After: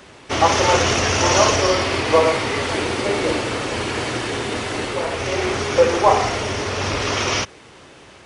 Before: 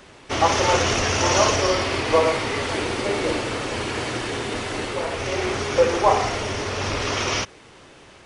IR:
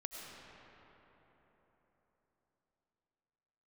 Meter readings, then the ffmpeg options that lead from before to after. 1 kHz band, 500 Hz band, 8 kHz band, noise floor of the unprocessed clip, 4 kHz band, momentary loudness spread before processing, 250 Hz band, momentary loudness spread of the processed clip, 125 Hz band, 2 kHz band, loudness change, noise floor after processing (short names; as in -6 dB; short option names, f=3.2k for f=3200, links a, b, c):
+3.0 dB, +3.0 dB, +3.0 dB, -48 dBFS, +3.0 dB, 9 LU, +3.0 dB, 9 LU, +3.0 dB, +3.0 dB, +3.0 dB, -45 dBFS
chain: -af "highpass=44,volume=3dB"